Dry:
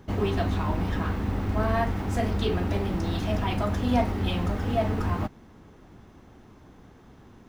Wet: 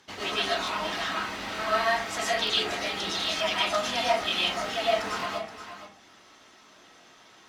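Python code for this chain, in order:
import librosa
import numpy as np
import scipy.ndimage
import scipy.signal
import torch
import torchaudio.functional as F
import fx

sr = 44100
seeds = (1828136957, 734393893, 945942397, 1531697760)

p1 = x + fx.echo_single(x, sr, ms=474, db=-11.0, dry=0)
p2 = fx.dereverb_blind(p1, sr, rt60_s=0.53)
p3 = fx.bandpass_q(p2, sr, hz=4600.0, q=0.91)
p4 = fx.rev_freeverb(p3, sr, rt60_s=0.55, hf_ratio=0.45, predelay_ms=75, drr_db=-6.5)
p5 = fx.buffer_crackle(p4, sr, first_s=0.63, period_s=0.91, block=1024, kind='repeat')
y = p5 * 10.0 ** (8.5 / 20.0)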